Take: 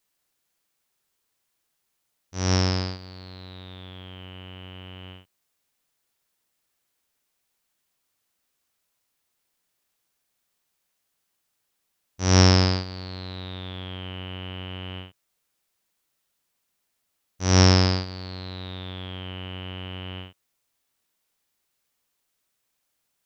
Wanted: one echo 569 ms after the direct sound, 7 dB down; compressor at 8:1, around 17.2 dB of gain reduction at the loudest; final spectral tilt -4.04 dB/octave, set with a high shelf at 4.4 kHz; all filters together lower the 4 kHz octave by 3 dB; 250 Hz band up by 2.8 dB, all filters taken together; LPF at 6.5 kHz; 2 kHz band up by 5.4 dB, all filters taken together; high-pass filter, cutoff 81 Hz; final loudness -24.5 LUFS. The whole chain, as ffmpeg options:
-af "highpass=81,lowpass=6500,equalizer=f=250:t=o:g=4,equalizer=f=2000:t=o:g=8,equalizer=f=4000:t=o:g=-9,highshelf=f=4400:g=5,acompressor=threshold=0.0447:ratio=8,aecho=1:1:569:0.447,volume=3.98"

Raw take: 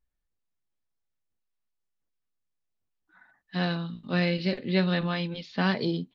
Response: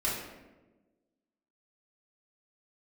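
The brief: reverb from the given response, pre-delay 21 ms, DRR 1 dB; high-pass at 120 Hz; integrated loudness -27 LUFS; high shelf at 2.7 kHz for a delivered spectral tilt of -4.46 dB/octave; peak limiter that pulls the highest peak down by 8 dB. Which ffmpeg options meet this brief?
-filter_complex "[0:a]highpass=120,highshelf=f=2700:g=7,alimiter=limit=0.133:level=0:latency=1,asplit=2[s0][s1];[1:a]atrim=start_sample=2205,adelay=21[s2];[s1][s2]afir=irnorm=-1:irlink=0,volume=0.376[s3];[s0][s3]amix=inputs=2:normalize=0,volume=1.06"

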